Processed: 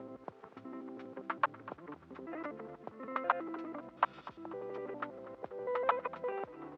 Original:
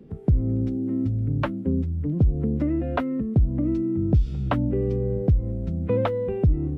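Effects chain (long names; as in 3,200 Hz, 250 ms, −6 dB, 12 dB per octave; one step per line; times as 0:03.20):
slices reordered back to front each 81 ms, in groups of 7
downward compressor 12 to 1, threshold −22 dBFS, peak gain reduction 8.5 dB
brickwall limiter −20 dBFS, peak gain reduction 6 dB
bit reduction 11 bits
four-pole ladder band-pass 1,300 Hz, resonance 40%
repeating echo 243 ms, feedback 56%, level −18 dB
level +16 dB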